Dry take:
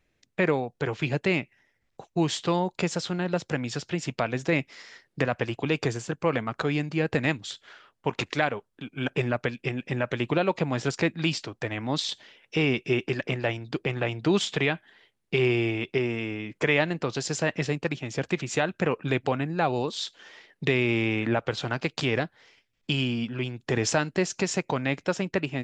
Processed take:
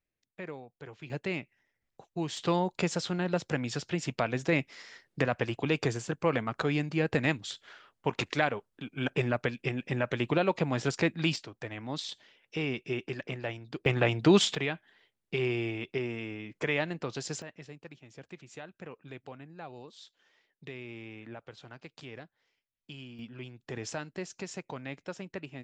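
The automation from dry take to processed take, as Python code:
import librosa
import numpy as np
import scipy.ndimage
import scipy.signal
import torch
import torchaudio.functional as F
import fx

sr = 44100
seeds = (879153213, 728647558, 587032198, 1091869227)

y = fx.gain(x, sr, db=fx.steps((0.0, -17.5), (1.1, -9.0), (2.37, -2.5), (11.36, -8.5), (13.86, 2.0), (14.55, -7.0), (17.42, -19.5), (23.19, -13.0)))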